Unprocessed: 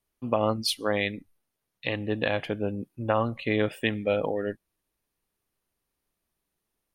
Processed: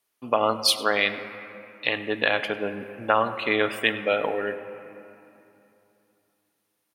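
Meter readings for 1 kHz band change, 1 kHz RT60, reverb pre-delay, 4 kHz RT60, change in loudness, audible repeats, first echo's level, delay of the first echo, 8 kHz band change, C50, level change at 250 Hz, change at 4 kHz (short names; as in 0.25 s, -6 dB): +6.5 dB, 2.9 s, 3 ms, 1.8 s, +4.0 dB, 1, -19.0 dB, 0.101 s, n/a, 11.0 dB, -2.0 dB, +7.0 dB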